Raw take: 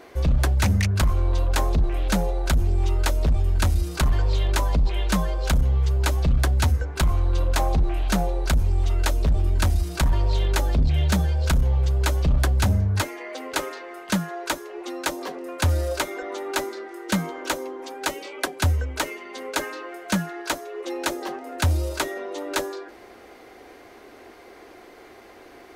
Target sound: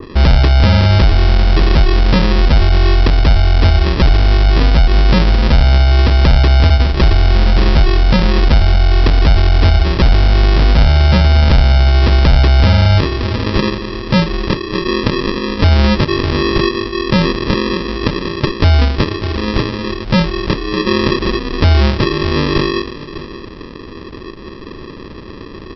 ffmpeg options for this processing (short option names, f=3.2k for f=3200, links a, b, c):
-af "equalizer=f=3.4k:t=o:w=1.3:g=-6.5,aresample=11025,acrusher=samples=15:mix=1:aa=0.000001,aresample=44100,aecho=1:1:600:0.141,alimiter=level_in=19.5dB:limit=-1dB:release=50:level=0:latency=1,adynamicequalizer=threshold=0.0398:dfrequency=2100:dqfactor=0.7:tfrequency=2100:tqfactor=0.7:attack=5:release=100:ratio=0.375:range=2:mode=boostabove:tftype=highshelf,volume=-3dB"